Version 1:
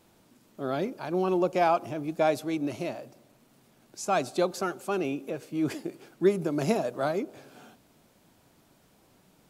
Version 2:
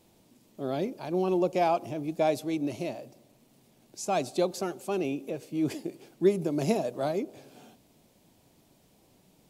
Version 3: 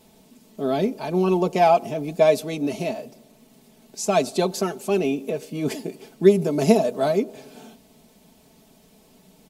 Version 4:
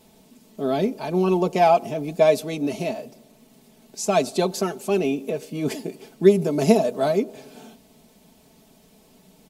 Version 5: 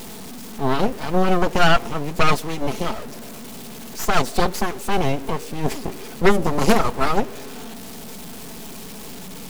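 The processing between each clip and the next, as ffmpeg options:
ffmpeg -i in.wav -af "equalizer=frequency=1400:width=1.7:gain=-9.5" out.wav
ffmpeg -i in.wav -af "aecho=1:1:4.6:0.7,volume=6.5dB" out.wav
ffmpeg -i in.wav -af anull out.wav
ffmpeg -i in.wav -af "aeval=exprs='val(0)+0.5*0.0668*sgn(val(0))':channel_layout=same,aeval=exprs='0.841*(cos(1*acos(clip(val(0)/0.841,-1,1)))-cos(1*PI/2))+0.106*(cos(3*acos(clip(val(0)/0.841,-1,1)))-cos(3*PI/2))+0.0668*(cos(5*acos(clip(val(0)/0.841,-1,1)))-cos(5*PI/2))+0.0531*(cos(7*acos(clip(val(0)/0.841,-1,1)))-cos(7*PI/2))+0.299*(cos(8*acos(clip(val(0)/0.841,-1,1)))-cos(8*PI/2))':channel_layout=same,bandreject=frequency=620:width=12,volume=-3dB" out.wav

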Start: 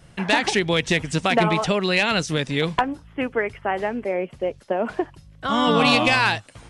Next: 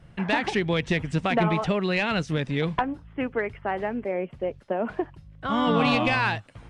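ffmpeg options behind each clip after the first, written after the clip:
ffmpeg -i in.wav -af "bass=frequency=250:gain=4,treble=frequency=4000:gain=-12,acontrast=28,volume=-9dB" out.wav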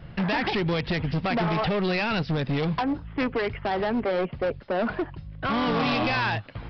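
ffmpeg -i in.wav -af "alimiter=limit=-20.5dB:level=0:latency=1:release=136,aresample=11025,asoftclip=type=hard:threshold=-30dB,aresample=44100,volume=8dB" out.wav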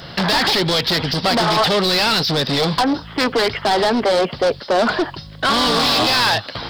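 ffmpeg -i in.wav -filter_complex "[0:a]aexciter=amount=10.4:drive=5.9:freq=3700,asplit=2[link_01][link_02];[link_02]highpass=frequency=720:poles=1,volume=24dB,asoftclip=type=tanh:threshold=-5dB[link_03];[link_01][link_03]amix=inputs=2:normalize=0,lowpass=frequency=2300:poles=1,volume=-6dB" out.wav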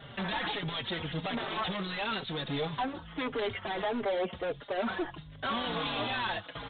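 ffmpeg -i in.wav -filter_complex "[0:a]aresample=8000,asoftclip=type=tanh:threshold=-17dB,aresample=44100,asplit=2[link_01][link_02];[link_02]adelay=4.5,afreqshift=-1.5[link_03];[link_01][link_03]amix=inputs=2:normalize=1,volume=-9dB" out.wav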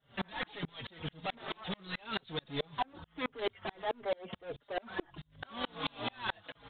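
ffmpeg -i in.wav -af "aeval=exprs='val(0)*pow(10,-36*if(lt(mod(-4.6*n/s,1),2*abs(-4.6)/1000),1-mod(-4.6*n/s,1)/(2*abs(-4.6)/1000),(mod(-4.6*n/s,1)-2*abs(-4.6)/1000)/(1-2*abs(-4.6)/1000))/20)':channel_layout=same,volume=3dB" out.wav

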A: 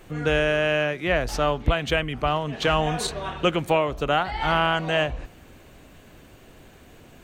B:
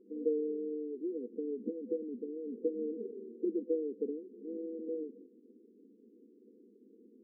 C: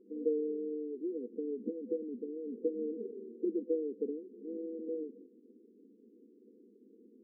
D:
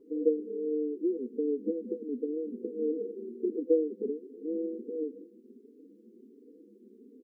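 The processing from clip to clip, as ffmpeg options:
ffmpeg -i in.wav -af "afftfilt=real='re*between(b*sr/4096,200,500)':imag='im*between(b*sr/4096,200,500)':win_size=4096:overlap=0.75,volume=-6dB" out.wav
ffmpeg -i in.wav -af anull out.wav
ffmpeg -i in.wav -filter_complex "[0:a]asplit=2[link_01][link_02];[link_02]adelay=4.5,afreqshift=1.4[link_03];[link_01][link_03]amix=inputs=2:normalize=1,volume=8.5dB" out.wav

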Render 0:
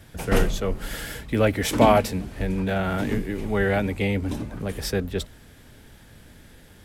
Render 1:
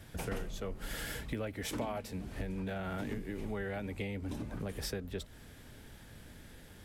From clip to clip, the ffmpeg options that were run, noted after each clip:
ffmpeg -i in.wav -af "acompressor=threshold=-31dB:ratio=8,volume=-4dB" out.wav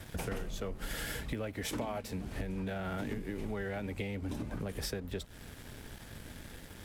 ffmpeg -i in.wav -af "aeval=exprs='sgn(val(0))*max(abs(val(0))-0.00106,0)':channel_layout=same,acompressor=threshold=-47dB:ratio=2,volume=8dB" out.wav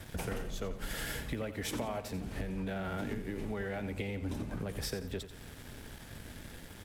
ffmpeg -i in.wav -af "aecho=1:1:88|176|264|352:0.251|0.0955|0.0363|0.0138" out.wav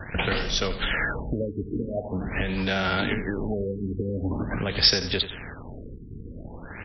ffmpeg -i in.wav -af "crystalizer=i=9:c=0,afftfilt=real='re*lt(b*sr/1024,450*pow(6000/450,0.5+0.5*sin(2*PI*0.45*pts/sr)))':imag='im*lt(b*sr/1024,450*pow(6000/450,0.5+0.5*sin(2*PI*0.45*pts/sr)))':win_size=1024:overlap=0.75,volume=9dB" out.wav

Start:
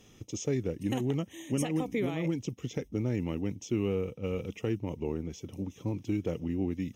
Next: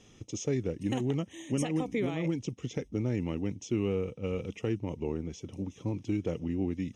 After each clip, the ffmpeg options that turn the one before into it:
ffmpeg -i in.wav -af "lowpass=frequency=9200:width=0.5412,lowpass=frequency=9200:width=1.3066" out.wav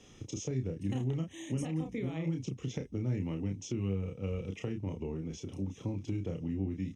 ffmpeg -i in.wav -filter_complex "[0:a]asplit=2[link_01][link_02];[link_02]adelay=31,volume=-5dB[link_03];[link_01][link_03]amix=inputs=2:normalize=0,acrossover=split=180[link_04][link_05];[link_05]acompressor=threshold=-39dB:ratio=4[link_06];[link_04][link_06]amix=inputs=2:normalize=0" out.wav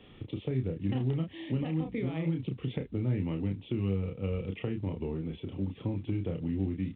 ffmpeg -i in.wav -af "volume=3dB" -ar 8000 -c:a pcm_mulaw out.wav

